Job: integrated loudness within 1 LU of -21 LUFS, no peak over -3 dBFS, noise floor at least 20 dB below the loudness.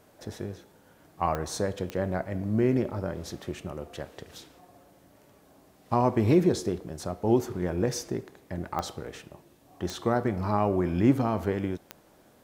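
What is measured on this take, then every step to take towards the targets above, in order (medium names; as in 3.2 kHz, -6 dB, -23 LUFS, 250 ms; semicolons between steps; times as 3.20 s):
clicks found 5; loudness -28.5 LUFS; peak level -9.5 dBFS; loudness target -21.0 LUFS
-> de-click; trim +7.5 dB; peak limiter -3 dBFS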